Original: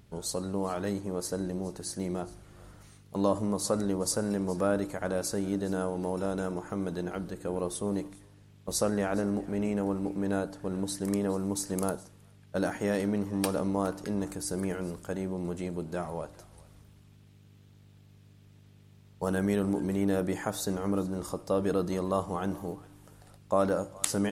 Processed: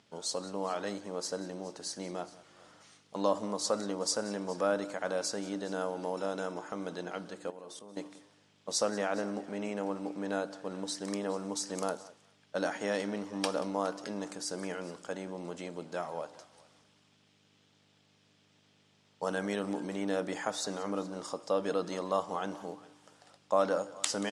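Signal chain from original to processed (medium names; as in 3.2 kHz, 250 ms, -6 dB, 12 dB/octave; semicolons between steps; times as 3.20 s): 7.50–7.97 s: level held to a coarse grid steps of 22 dB; cabinet simulation 320–8100 Hz, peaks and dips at 380 Hz -7 dB, 3.2 kHz +4 dB, 5.2 kHz +4 dB; delay 182 ms -19 dB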